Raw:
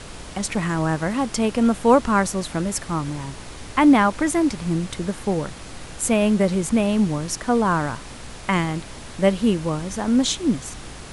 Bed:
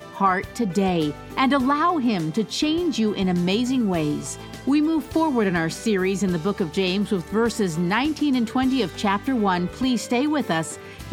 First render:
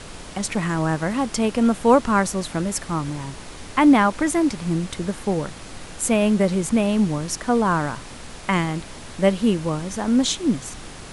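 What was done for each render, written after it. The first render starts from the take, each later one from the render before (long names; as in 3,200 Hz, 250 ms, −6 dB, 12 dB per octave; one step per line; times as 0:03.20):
hum removal 60 Hz, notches 2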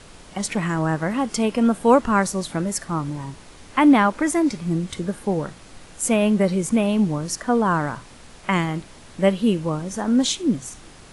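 noise reduction from a noise print 7 dB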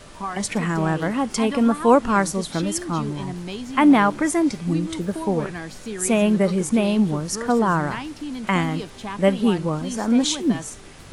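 mix in bed −10.5 dB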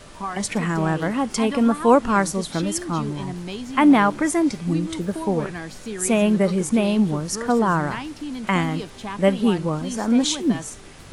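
no processing that can be heard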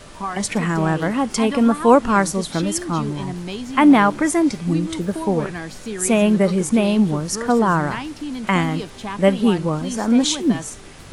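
level +2.5 dB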